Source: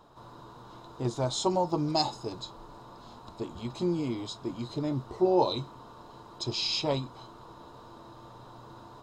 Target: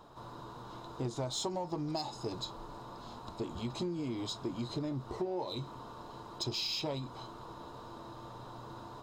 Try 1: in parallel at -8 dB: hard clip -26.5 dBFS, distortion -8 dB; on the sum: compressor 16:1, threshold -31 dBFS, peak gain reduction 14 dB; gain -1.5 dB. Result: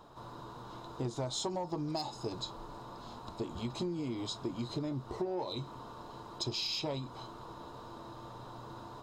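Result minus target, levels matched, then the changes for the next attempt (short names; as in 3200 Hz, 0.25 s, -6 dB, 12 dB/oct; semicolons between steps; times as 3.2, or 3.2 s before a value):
hard clip: distortion -5 dB
change: hard clip -35 dBFS, distortion -3 dB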